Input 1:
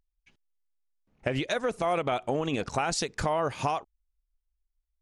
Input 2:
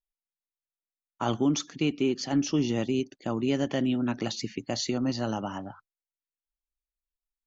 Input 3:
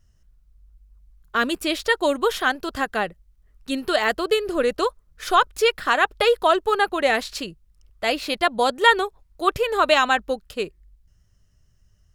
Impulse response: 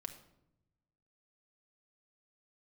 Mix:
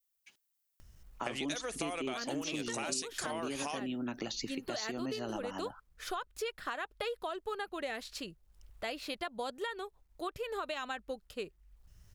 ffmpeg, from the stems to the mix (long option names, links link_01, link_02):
-filter_complex "[0:a]highpass=frequency=620:poles=1,aemphasis=mode=production:type=75kf,volume=-1dB[link_01];[1:a]highpass=frequency=300:poles=1,volume=1dB[link_02];[2:a]acrusher=bits=11:mix=0:aa=0.000001,acompressor=mode=upward:threshold=-33dB:ratio=2.5,adelay=800,volume=-11dB[link_03];[link_02][link_03]amix=inputs=2:normalize=0,alimiter=limit=-21.5dB:level=0:latency=1:release=323,volume=0dB[link_04];[link_01][link_04]amix=inputs=2:normalize=0,adynamicequalizer=threshold=0.00891:dfrequency=970:dqfactor=0.93:tfrequency=970:tqfactor=0.93:attack=5:release=100:ratio=0.375:range=2:mode=cutabove:tftype=bell,acompressor=threshold=-34dB:ratio=6"